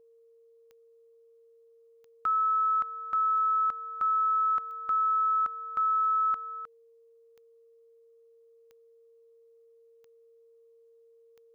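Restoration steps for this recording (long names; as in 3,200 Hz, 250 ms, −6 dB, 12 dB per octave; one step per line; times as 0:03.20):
click removal
notch filter 460 Hz, Q 30
downward expander −52 dBFS, range −21 dB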